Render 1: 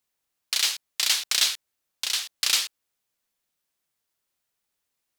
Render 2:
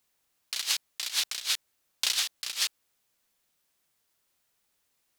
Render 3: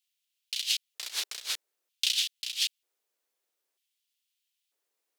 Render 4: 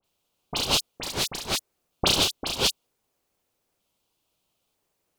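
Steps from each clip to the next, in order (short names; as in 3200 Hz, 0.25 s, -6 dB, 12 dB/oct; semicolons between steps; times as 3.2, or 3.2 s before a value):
negative-ratio compressor -29 dBFS, ratio -0.5
LFO high-pass square 0.53 Hz 410–3000 Hz; in parallel at -4 dB: crossover distortion -46.5 dBFS; on the sum: gain -8.5 dB
in parallel at -4 dB: sample-and-hold 23×; on the sum: dispersion highs, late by 42 ms, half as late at 2500 Hz; gain +4.5 dB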